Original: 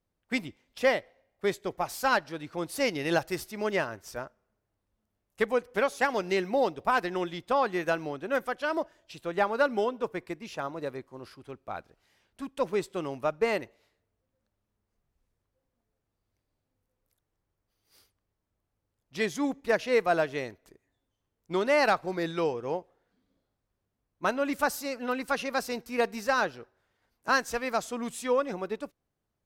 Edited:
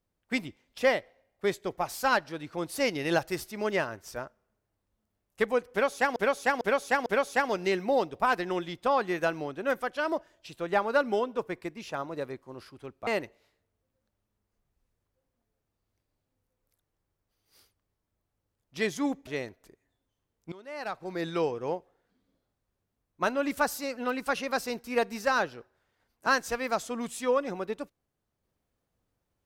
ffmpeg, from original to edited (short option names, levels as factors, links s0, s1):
-filter_complex "[0:a]asplit=7[s0][s1][s2][s3][s4][s5][s6];[s0]atrim=end=6.162[s7];[s1]atrim=start=5.708:end=6.162[s8];[s2]atrim=start=5.708:end=6.162[s9];[s3]atrim=start=5.708:end=11.722[s10];[s4]atrim=start=13.458:end=19.662[s11];[s5]atrim=start=20.288:end=21.54,asetpts=PTS-STARTPTS,afade=t=out:st=1.248:d=0.004:c=hsin:silence=0.0749894[s12];[s6]atrim=start=21.54,asetpts=PTS-STARTPTS,afade=t=in:d=0.77:c=qua:silence=0.0749894[s13];[s7][s8]acrossfade=d=0.004:c1=hsin:c2=hsin[s14];[s14][s9]acrossfade=d=0.004:c1=hsin:c2=hsin[s15];[s15][s10]acrossfade=d=0.004:c1=hsin:c2=hsin[s16];[s16][s11]acrossfade=d=0.004:c1=hsin:c2=hsin[s17];[s12][s13]concat=n=2:v=0:a=1[s18];[s17][s18]acrossfade=d=0.004:c1=hsin:c2=hsin"